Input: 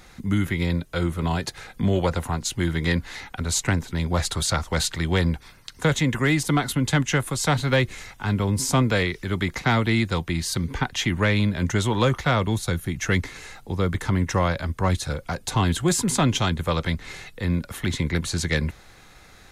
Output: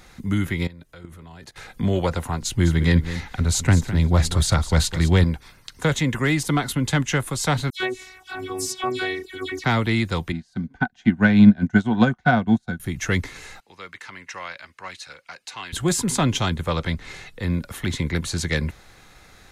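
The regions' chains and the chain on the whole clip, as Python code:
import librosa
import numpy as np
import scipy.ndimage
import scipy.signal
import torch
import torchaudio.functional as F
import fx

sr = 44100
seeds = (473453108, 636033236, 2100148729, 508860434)

y = fx.chain(x, sr, fx.level_steps(step_db=21),
    fx.peak_eq(hz=1800.0, db=3.0, octaves=0.37), at=(0.67, 1.56))
y = fx.chain(y, sr, fx.low_shelf(hz=220.0, db=9.0),
    fx.echo_single(ms=206, db=-12.0), at=(2.42, 5.24))
y = fx.chain(y, sr, fx.dispersion(late='lows', ms=103.0, hz=2700.0),
    fx.robotise(hz=373.0),
    fx.highpass(hz=150.0, slope=6), at=(7.7, 9.64))
y = fx.chain(y, sr, fx.lowpass(hz=7000.0, slope=12),
    fx.small_body(hz=(220.0, 720.0, 1500.0), ring_ms=40, db=17),
    fx.upward_expand(threshold_db=-27.0, expansion=2.5), at=(10.32, 12.8))
y = fx.chain(y, sr, fx.bandpass_q(hz=2900.0, q=1.2),
    fx.peak_eq(hz=3400.0, db=-9.0, octaves=0.24), at=(13.6, 15.73))
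y = fx.chain(y, sr, fx.clip_hard(threshold_db=-13.5),
    fx.high_shelf(hz=12000.0, db=-9.5), at=(16.61, 17.41))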